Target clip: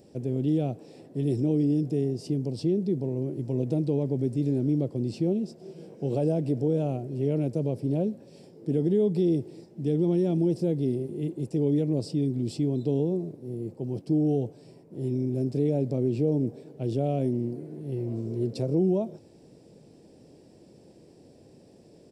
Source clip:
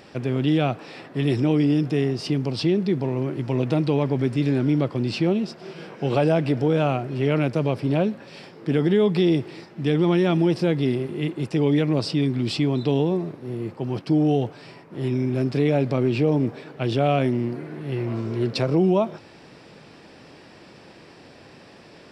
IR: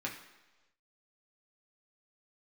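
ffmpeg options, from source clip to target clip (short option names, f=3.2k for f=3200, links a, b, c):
-af "firequalizer=gain_entry='entry(470,0);entry(1200,-22);entry(7500,1)':delay=0.05:min_phase=1,volume=-4.5dB"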